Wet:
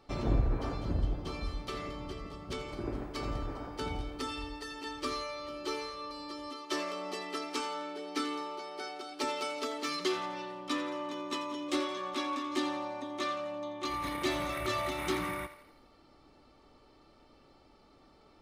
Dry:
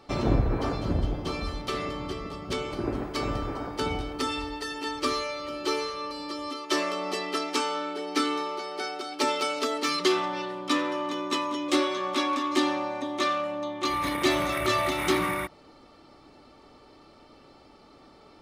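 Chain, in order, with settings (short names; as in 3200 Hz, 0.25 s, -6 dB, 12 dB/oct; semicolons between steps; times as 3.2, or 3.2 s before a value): low shelf 62 Hz +10 dB; thinning echo 85 ms, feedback 52%, level -13 dB; gain -8.5 dB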